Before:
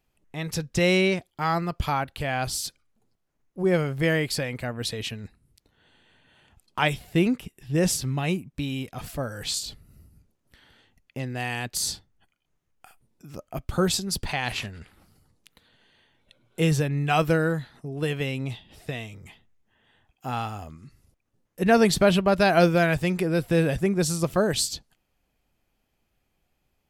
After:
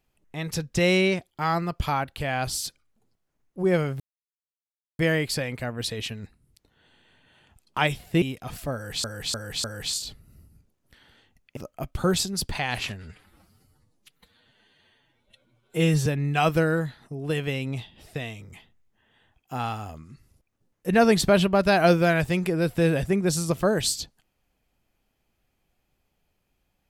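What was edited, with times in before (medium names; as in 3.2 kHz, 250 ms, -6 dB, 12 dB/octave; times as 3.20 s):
4.00 s: insert silence 0.99 s
7.23–8.73 s: delete
9.25–9.55 s: loop, 4 plays
11.18–13.31 s: delete
14.77–16.79 s: stretch 1.5×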